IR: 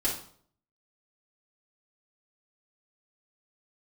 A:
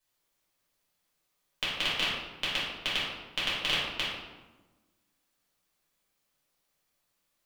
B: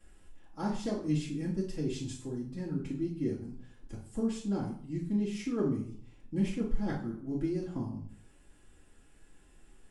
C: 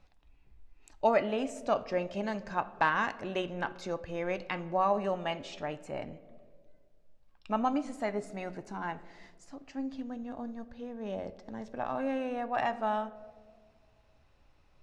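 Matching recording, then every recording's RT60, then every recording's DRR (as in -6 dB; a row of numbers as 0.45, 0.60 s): B; 1.2, 0.55, 1.9 s; -9.5, -8.5, 11.0 dB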